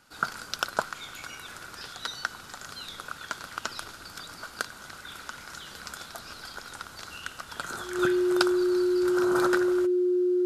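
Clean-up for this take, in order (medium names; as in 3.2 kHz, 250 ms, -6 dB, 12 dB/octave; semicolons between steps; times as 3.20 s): band-stop 360 Hz, Q 30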